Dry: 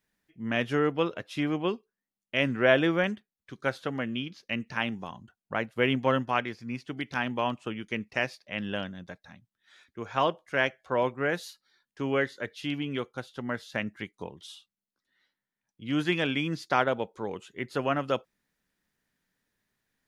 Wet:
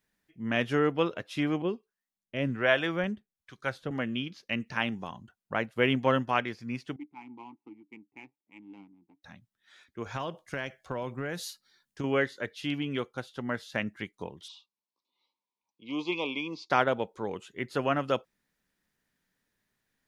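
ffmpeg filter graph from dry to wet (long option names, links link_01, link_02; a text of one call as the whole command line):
ffmpeg -i in.wav -filter_complex "[0:a]asettb=1/sr,asplit=3[link_01][link_02][link_03];[link_01]atrim=end=1.624[link_04];[link_02]atrim=start=1.62:end=3.91,asetpts=PTS-STARTPTS,afade=type=in:duration=0.004:curve=qsin,afade=type=out:start_time=2.286:duration=0.004:curve=qsin,asubboost=boost=3:cutoff=160,acrossover=split=590[link_05][link_06];[link_05]aeval=exprs='val(0)*(1-0.7/2+0.7/2*cos(2*PI*1.3*n/s))':channel_layout=same[link_07];[link_06]aeval=exprs='val(0)*(1-0.7/2-0.7/2*cos(2*PI*1.3*n/s))':channel_layout=same[link_08];[link_07][link_08]amix=inputs=2:normalize=0[link_09];[link_03]atrim=start=3.906[link_10];[link_04][link_09]acrossfade=duration=0.004:curve1=hsin:curve2=qsin[link_11];[link_11][link_10]acrossfade=duration=0.004:curve1=qsin:curve2=hsin,asettb=1/sr,asplit=3[link_12][link_13][link_14];[link_12]atrim=end=6.964[link_15];[link_13]atrim=start=6.96:end=9.23,asetpts=PTS-STARTPTS,afade=type=in:duration=0.004:curve=qsin,afade=type=out:start_time=2.266:duration=0.004:curve=qsin,flanger=delay=2.1:depth=7:regen=64:speed=1.2:shape=triangular,adynamicsmooth=sensitivity=5.5:basefreq=560,asplit=3[link_16][link_17][link_18];[link_16]bandpass=frequency=300:width_type=q:width=8,volume=0dB[link_19];[link_17]bandpass=frequency=870:width_type=q:width=8,volume=-6dB[link_20];[link_18]bandpass=frequency=2240:width_type=q:width=8,volume=-9dB[link_21];[link_19][link_20][link_21]amix=inputs=3:normalize=0[link_22];[link_14]atrim=start=9.226[link_23];[link_15][link_22]acrossfade=duration=0.004:curve1=hsin:curve2=qsin[link_24];[link_24][link_23]acrossfade=duration=0.004:curve1=qsin:curve2=hsin,asettb=1/sr,asplit=3[link_25][link_26][link_27];[link_25]atrim=end=10.064[link_28];[link_26]atrim=start=10.06:end=12.04,asetpts=PTS-STARTPTS,afade=type=in:duration=0.004:curve=qsin,afade=type=out:start_time=1.976:duration=0.004:curve=qsin,bass=frequency=250:gain=7,treble=frequency=4000:gain=6,acompressor=threshold=-29dB:ratio=12:attack=3.2:release=140:knee=1:detection=peak[link_29];[link_27]atrim=start=12.036[link_30];[link_28][link_29]acrossfade=duration=0.004:curve1=hsin:curve2=qsin[link_31];[link_31][link_30]acrossfade=duration=0.004:curve1=qsin:curve2=hsin,asettb=1/sr,asplit=3[link_32][link_33][link_34];[link_32]atrim=end=14.484[link_35];[link_33]atrim=start=14.48:end=16.7,asetpts=PTS-STARTPTS,afade=type=in:duration=0.004:curve=qsin,afade=type=out:start_time=2.216:duration=0.004:curve=qsin,asuperstop=centerf=1600:order=12:qfactor=1.7,highpass=370,equalizer=frequency=660:width_type=q:width=4:gain=-8,equalizer=frequency=960:width_type=q:width=4:gain=9,equalizer=frequency=1800:width_type=q:width=4:gain=-7,equalizer=frequency=3100:width_type=q:width=4:gain=-5,lowpass=frequency=5400:width=0.5412,lowpass=frequency=5400:width=1.3066[link_36];[link_34]atrim=start=16.696[link_37];[link_35][link_36]acrossfade=duration=0.004:curve1=hsin:curve2=qsin[link_38];[link_38][link_37]acrossfade=duration=0.004:curve1=qsin:curve2=hsin" out.wav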